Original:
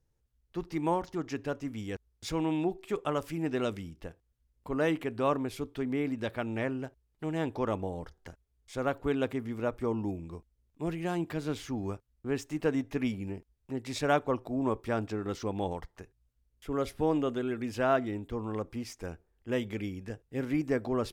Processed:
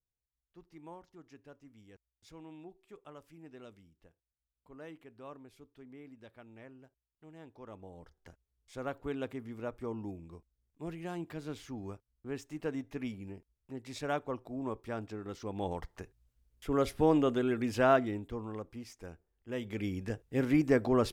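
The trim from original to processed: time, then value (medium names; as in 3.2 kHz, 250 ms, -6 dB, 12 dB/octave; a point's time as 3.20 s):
7.56 s -20 dB
8.29 s -7.5 dB
15.40 s -7.5 dB
15.91 s +2 dB
17.87 s +2 dB
18.65 s -7.5 dB
19.53 s -7.5 dB
19.95 s +3 dB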